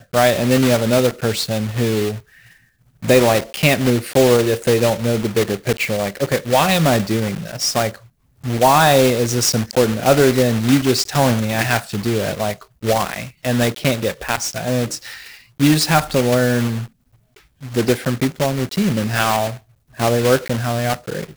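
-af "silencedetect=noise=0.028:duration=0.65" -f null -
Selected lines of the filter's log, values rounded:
silence_start: 2.19
silence_end: 3.03 | silence_duration: 0.84
silence_start: 16.86
silence_end: 17.63 | silence_duration: 0.77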